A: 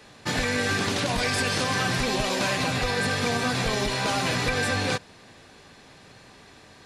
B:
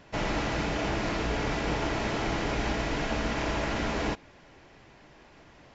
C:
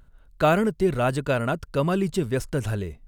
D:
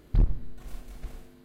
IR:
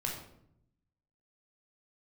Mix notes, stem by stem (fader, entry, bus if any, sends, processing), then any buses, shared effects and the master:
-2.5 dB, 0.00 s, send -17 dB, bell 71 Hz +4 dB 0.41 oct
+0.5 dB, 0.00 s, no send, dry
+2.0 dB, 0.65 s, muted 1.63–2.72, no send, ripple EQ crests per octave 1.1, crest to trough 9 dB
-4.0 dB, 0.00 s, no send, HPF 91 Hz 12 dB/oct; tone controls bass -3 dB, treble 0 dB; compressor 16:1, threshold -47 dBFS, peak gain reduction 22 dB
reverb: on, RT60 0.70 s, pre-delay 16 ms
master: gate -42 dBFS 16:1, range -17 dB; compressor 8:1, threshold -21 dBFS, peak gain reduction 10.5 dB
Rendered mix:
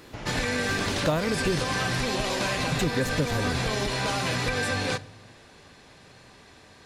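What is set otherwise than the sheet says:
stem B +0.5 dB -> -9.5 dB; stem D -4.0 dB -> +6.5 dB; master: missing gate -42 dBFS 16:1, range -17 dB

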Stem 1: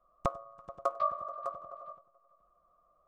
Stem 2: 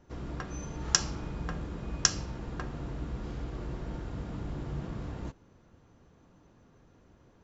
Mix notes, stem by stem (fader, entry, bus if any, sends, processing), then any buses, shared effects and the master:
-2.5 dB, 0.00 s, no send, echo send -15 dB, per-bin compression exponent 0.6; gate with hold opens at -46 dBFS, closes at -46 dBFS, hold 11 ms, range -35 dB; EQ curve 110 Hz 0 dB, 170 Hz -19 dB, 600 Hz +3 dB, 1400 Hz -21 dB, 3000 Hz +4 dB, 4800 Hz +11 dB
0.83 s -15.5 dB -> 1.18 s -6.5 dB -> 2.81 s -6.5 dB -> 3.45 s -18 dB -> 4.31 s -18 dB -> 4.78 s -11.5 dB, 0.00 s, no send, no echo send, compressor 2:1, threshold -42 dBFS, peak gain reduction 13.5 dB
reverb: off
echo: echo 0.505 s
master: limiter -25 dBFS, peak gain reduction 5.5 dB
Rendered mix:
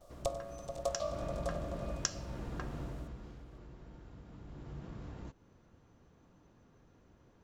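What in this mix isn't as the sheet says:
stem 2 -15.5 dB -> -7.5 dB; master: missing limiter -25 dBFS, peak gain reduction 5.5 dB

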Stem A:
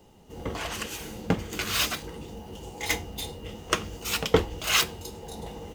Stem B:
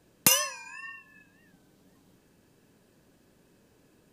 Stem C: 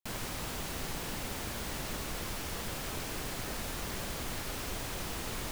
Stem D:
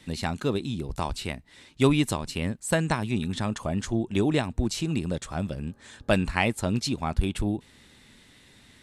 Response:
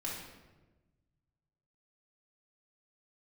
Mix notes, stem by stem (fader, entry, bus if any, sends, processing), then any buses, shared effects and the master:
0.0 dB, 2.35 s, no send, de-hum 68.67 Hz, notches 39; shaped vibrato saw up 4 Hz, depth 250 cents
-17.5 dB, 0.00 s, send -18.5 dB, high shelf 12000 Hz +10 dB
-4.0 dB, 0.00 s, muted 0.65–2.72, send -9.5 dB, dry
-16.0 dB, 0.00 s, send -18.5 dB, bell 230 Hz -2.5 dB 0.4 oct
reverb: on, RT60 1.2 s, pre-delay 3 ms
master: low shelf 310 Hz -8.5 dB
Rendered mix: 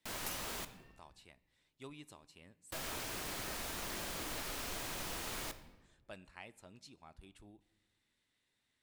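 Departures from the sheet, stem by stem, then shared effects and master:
stem A: muted; stem B -17.5 dB -> -28.5 dB; stem D -16.0 dB -> -26.5 dB

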